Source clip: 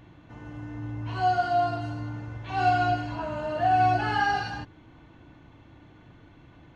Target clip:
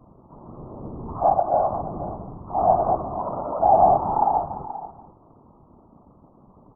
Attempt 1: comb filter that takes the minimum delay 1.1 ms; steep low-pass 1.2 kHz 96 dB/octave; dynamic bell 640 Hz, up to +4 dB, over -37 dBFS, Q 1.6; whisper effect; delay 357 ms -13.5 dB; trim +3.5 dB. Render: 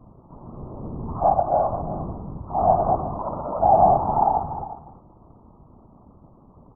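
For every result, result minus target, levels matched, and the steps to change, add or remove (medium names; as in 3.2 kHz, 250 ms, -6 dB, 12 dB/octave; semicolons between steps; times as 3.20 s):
echo 122 ms early; 125 Hz band +4.5 dB
change: delay 479 ms -13.5 dB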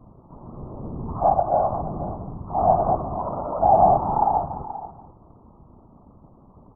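125 Hz band +4.5 dB
add after dynamic bell: high-pass 120 Hz 24 dB/octave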